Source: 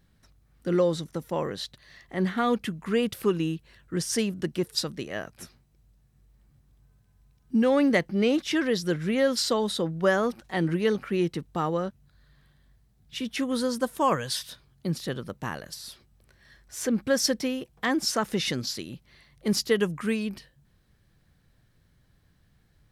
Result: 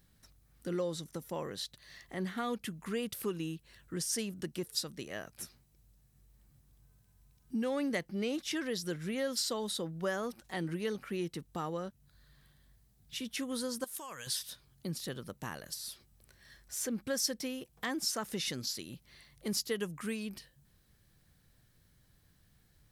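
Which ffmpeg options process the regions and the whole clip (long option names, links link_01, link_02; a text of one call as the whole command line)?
ffmpeg -i in.wav -filter_complex "[0:a]asettb=1/sr,asplit=3[link_01][link_02][link_03];[link_01]atrim=end=13.844[link_04];[link_02]atrim=start=13.84:end=14.27,asetpts=PTS-STARTPTS,afade=type=in:duration=0.004:curve=qsin,afade=type=out:start_time=0.426:duration=0.004:curve=qsin,tiltshelf=frequency=1100:gain=-7,acompressor=threshold=-36dB:ratio=6:attack=3.2:release=140:knee=1:detection=peak[link_05];[link_03]atrim=start=14.266[link_06];[link_04][link_05]acrossfade=duration=0.004:curve1=hsin:curve2=qsin[link_07];[link_07][link_06]acrossfade=duration=0.004:curve1=qsin:curve2=hsin,highshelf=frequency=5300:gain=11.5,acompressor=threshold=-41dB:ratio=1.5,volume=-4dB" out.wav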